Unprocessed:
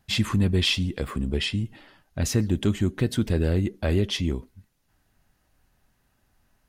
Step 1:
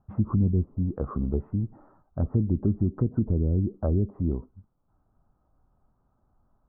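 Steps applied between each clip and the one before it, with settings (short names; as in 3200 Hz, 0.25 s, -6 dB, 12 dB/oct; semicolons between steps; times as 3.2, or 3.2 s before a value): treble ducked by the level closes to 330 Hz, closed at -19 dBFS; Chebyshev low-pass 1300 Hz, order 5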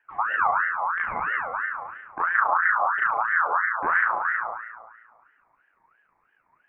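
spring tank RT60 1.5 s, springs 35 ms, chirp 35 ms, DRR -2 dB; ring modulator with a swept carrier 1300 Hz, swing 30%, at 3 Hz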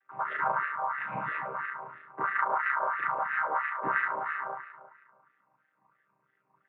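chord vocoder minor triad, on C3; gain -6 dB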